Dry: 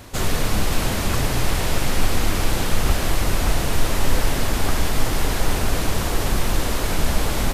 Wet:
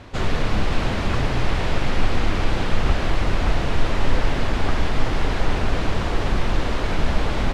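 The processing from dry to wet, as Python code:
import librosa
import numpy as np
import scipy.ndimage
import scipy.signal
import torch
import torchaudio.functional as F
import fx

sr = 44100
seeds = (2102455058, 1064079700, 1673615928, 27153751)

y = scipy.signal.sosfilt(scipy.signal.butter(2, 3500.0, 'lowpass', fs=sr, output='sos'), x)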